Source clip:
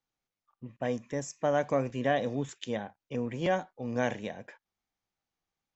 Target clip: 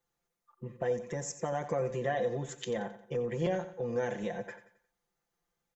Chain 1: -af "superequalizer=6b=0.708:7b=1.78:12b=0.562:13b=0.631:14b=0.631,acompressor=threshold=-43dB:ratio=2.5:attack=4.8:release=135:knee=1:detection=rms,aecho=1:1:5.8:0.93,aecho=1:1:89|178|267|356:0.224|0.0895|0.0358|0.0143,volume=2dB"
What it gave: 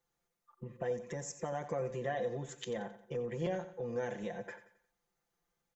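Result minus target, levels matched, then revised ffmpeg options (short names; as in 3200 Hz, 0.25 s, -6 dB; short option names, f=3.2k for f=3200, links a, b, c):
compressor: peak gain reduction +4.5 dB
-af "superequalizer=6b=0.708:7b=1.78:12b=0.562:13b=0.631:14b=0.631,acompressor=threshold=-35.5dB:ratio=2.5:attack=4.8:release=135:knee=1:detection=rms,aecho=1:1:5.8:0.93,aecho=1:1:89|178|267|356:0.224|0.0895|0.0358|0.0143,volume=2dB"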